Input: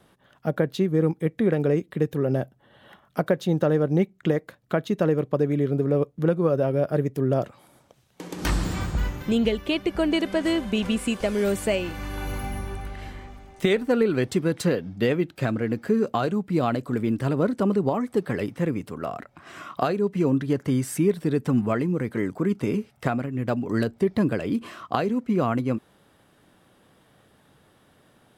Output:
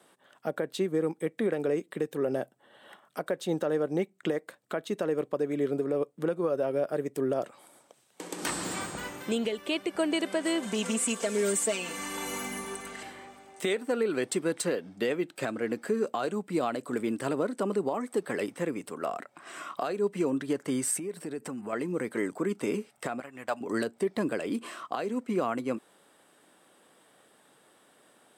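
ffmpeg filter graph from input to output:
-filter_complex "[0:a]asettb=1/sr,asplit=3[s0][s1][s2];[s0]atrim=end=10.624[s3];[s1]atrim=start=10.62:end=13.03,asetpts=PTS-STARTPTS,afade=t=in:d=0.004:c=qsin,afade=t=out:st=2.406:d=0.004:c=qsin,volume=8.91,asoftclip=hard,volume=0.112,equalizer=f=6800:t=o:w=0.58:g=8,aecho=1:1:4.4:0.95,atrim=end_sample=106281[s4];[s2]atrim=start=13.026[s5];[s3][s4]acrossfade=d=0.004:c1=hsin:c2=qsin[s6];[s6][s5]acrossfade=d=0.004:c1=qsin:c2=hsin,asettb=1/sr,asplit=3[s7][s8][s9];[s7]atrim=end=20.994[s10];[s8]atrim=start=20.99:end=21.73,asetpts=PTS-STARTPTS,afade=t=in:d=0.004:c=qsin,afade=t=out:st=0.736:d=0.004:c=qsin,equalizer=f=3500:t=o:w=0.2:g=-8,acompressor=threshold=0.0398:ratio=4:attack=3.2:release=140:knee=1:detection=peak[s11];[s9]atrim=start=21.726[s12];[s10][s11]acrossfade=d=0.004:c1=hsin:c2=qsin[s13];[s13][s12]acrossfade=d=0.004:c1=qsin:c2=hsin,asettb=1/sr,asplit=3[s14][s15][s16];[s14]atrim=end=23.204[s17];[s15]atrim=start=23.2:end=23.61,asetpts=PTS-STARTPTS,afade=t=in:d=0.004:c=qsin,afade=t=out:st=0.406:d=0.004:c=qsin,agate=range=0.0224:threshold=0.0316:ratio=3:release=100:detection=peak,lowshelf=f=540:t=q:w=1.5:g=-10[s18];[s16]atrim=start=23.606[s19];[s17][s18]acrossfade=d=0.004:c1=hsin:c2=qsin[s20];[s20][s19]acrossfade=d=0.004:c1=qsin:c2=hsin,highpass=310,equalizer=f=8300:w=3.8:g=11.5,alimiter=limit=0.133:level=0:latency=1:release=228,volume=0.891"

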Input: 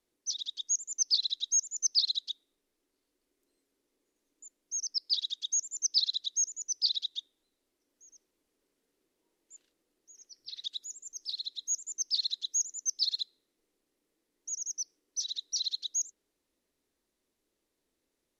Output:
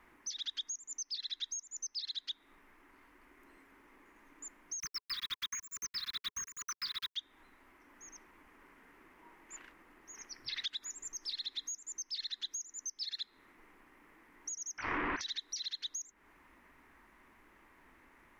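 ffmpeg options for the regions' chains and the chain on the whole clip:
-filter_complex "[0:a]asettb=1/sr,asplit=3[s0][s1][s2];[s0]atrim=end=4.804[s3];[s1]atrim=start=4.8:end=7.16,asetpts=PTS-STARTPTS,afade=t=in:d=0.004:c=qsin,afade=t=out:st=2.356:d=0.004:c=qsin,equalizer=f=1100:w=0.54:g=5,acrusher=bits=6:mix=0:aa=0.5,asuperstop=centerf=660:order=20:qfactor=1.1[s4];[s2]atrim=start=7.156[s5];[s3][s4]acrossfade=d=0.004:c1=hsin:c2=qsin[s6];[s6][s5]acrossfade=d=0.004:c1=qsin:c2=hsin,asettb=1/sr,asplit=3[s7][s8][s9];[s7]atrim=end=14.784[s10];[s8]atrim=start=14.78:end=15.21,asetpts=PTS-STARTPTS,afade=t=in:d=0.004:c=qsin,afade=t=out:st=0.426:d=0.004:c=qsin,aeval=exprs='val(0)+0.5*0.0119*sgn(val(0))':c=same,lowpass=f=3100:w=0.5412,lowpass=f=3100:w=1.3066[s11];[s9]atrim=start=15.206[s12];[s10][s11]acrossfade=d=0.004:c1=hsin:c2=qsin[s13];[s13][s12]acrossfade=d=0.004:c1=qsin:c2=hsin,equalizer=f=125:t=o:w=1:g=-4,equalizer=f=500:t=o:w=1:g=-9,equalizer=f=1000:t=o:w=1:g=11,equalizer=f=2000:t=o:w=1:g=11,equalizer=f=4000:t=o:w=1:g=-11,equalizer=f=8000:t=o:w=1:g=-5,acompressor=threshold=0.00316:ratio=10,bass=f=250:g=4,treble=f=4000:g=-9,volume=7.94"

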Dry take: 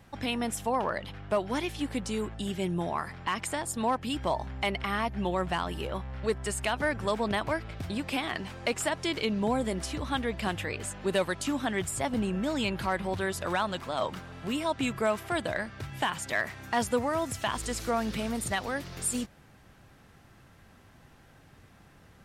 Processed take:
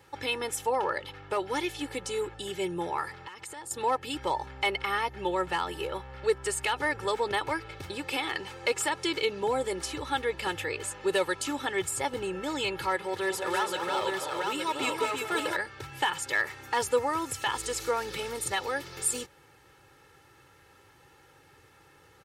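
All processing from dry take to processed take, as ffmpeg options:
-filter_complex "[0:a]asettb=1/sr,asplit=3[s0][s1][s2];[s0]atrim=end=3.134[s3];[s1]atrim=start=3.13:end=3.71,asetpts=PTS-STARTPTS,afade=t=in:d=0.004:c=qsin,afade=t=out:st=0.576:d=0.004:c=qsin,acompressor=threshold=0.0112:ratio=10:attack=3.2:release=140:knee=1:detection=peak,bandreject=f=2300:w=29[s4];[s2]atrim=start=3.706[s5];[s3][s4]acrossfade=d=0.004:c1=hsin:c2=qsin[s6];[s6][s5]acrossfade=d=0.004:c1=qsin:c2=hsin,asettb=1/sr,asplit=3[s7][s8][s9];[s7]atrim=end=12.964[s10];[s8]atrim=start=12.96:end=15.56,asetpts=PTS-STARTPTS,afade=t=in:d=0.004:c=qsin,afade=t=out:st=2.596:d=0.004:c=qsin,highpass=f=190:p=1,volume=15,asoftclip=hard,volume=0.0668,aecho=1:1:203|336|866:0.376|0.596|0.668,atrim=end_sample=114660[s11];[s9]atrim=start=15.556[s12];[s10][s11]acrossfade=d=0.004:c1=hsin:c2=qsin[s13];[s13][s12]acrossfade=d=0.004:c1=qsin:c2=hsin,highpass=f=260:p=1,bandreject=f=730:w=12,aecho=1:1:2.3:0.82"

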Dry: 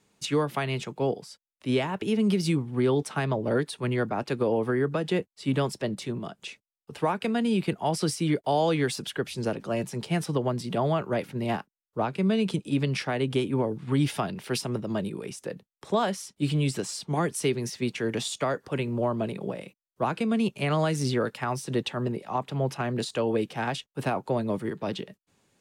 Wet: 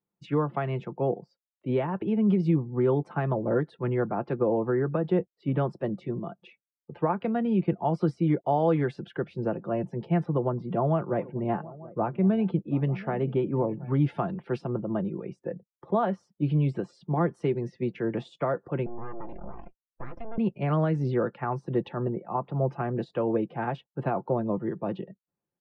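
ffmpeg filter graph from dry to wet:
-filter_complex "[0:a]asettb=1/sr,asplit=3[s0][s1][s2];[s0]atrim=end=10.234[s3];[s1]atrim=start=10.23:end=13.94,asetpts=PTS-STARTPTS,afade=t=in:d=0.004:c=qsin,afade=t=out:st=3.706:d=0.004:c=qsin,lowpass=f=4000:p=1,aecho=1:1:727|892:0.106|0.1,atrim=end_sample=163611[s4];[s2]atrim=start=13.936[s5];[s3][s4]acrossfade=d=0.004:c1=hsin:c2=qsin[s6];[s6][s5]acrossfade=d=0.004:c1=qsin:c2=hsin,asettb=1/sr,asplit=3[s7][s8][s9];[s7]atrim=end=18.864[s10];[s8]atrim=start=18.86:end=20.38,asetpts=PTS-STARTPTS,afade=t=in:d=0.004:c=qsin,afade=t=out:st=1.516:d=0.004:c=qsin,acompressor=threshold=0.0178:ratio=2.5:attack=3.2:release=140:knee=1:detection=peak,aeval=exprs='abs(val(0))':c=same[s11];[s9]atrim=start=20.376[s12];[s10][s11]acrossfade=d=0.004:c1=hsin:c2=qsin[s13];[s13][s12]acrossfade=d=0.004:c1=qsin:c2=hsin,aecho=1:1:5.8:0.37,afftdn=nr=21:nf=-46,lowpass=1300"

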